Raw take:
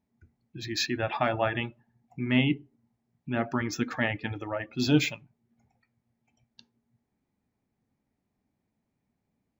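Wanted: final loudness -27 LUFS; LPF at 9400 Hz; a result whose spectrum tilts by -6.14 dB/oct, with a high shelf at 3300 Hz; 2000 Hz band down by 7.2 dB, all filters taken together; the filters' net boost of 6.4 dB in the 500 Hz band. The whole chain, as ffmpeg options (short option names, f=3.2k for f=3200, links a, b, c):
-af "lowpass=9.4k,equalizer=f=500:t=o:g=9,equalizer=f=2k:t=o:g=-7,highshelf=f=3.3k:g=-8,volume=0.5dB"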